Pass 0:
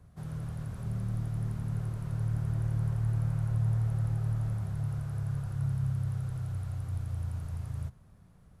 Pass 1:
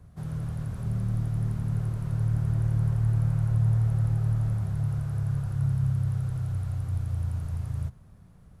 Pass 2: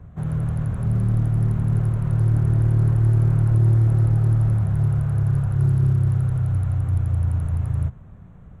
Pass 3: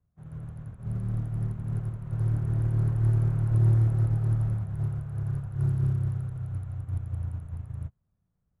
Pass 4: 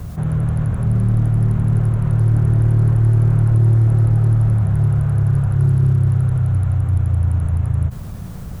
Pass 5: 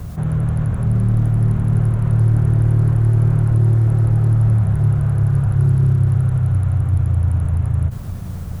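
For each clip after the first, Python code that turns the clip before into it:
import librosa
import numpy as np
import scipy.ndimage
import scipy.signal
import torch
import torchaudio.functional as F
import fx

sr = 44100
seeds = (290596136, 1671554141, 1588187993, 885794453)

y1 = fx.low_shelf(x, sr, hz=320.0, db=3.0)
y1 = y1 * librosa.db_to_amplitude(2.5)
y2 = fx.wiener(y1, sr, points=9)
y2 = 10.0 ** (-19.5 / 20.0) * np.tanh(y2 / 10.0 ** (-19.5 / 20.0))
y2 = y2 * librosa.db_to_amplitude(9.0)
y3 = fx.upward_expand(y2, sr, threshold_db=-34.0, expansion=2.5)
y3 = y3 * librosa.db_to_amplitude(-3.5)
y4 = fx.env_flatten(y3, sr, amount_pct=70)
y4 = y4 * librosa.db_to_amplitude(7.0)
y5 = y4 + 10.0 ** (-15.0 / 20.0) * np.pad(y4, (int(1163 * sr / 1000.0), 0))[:len(y4)]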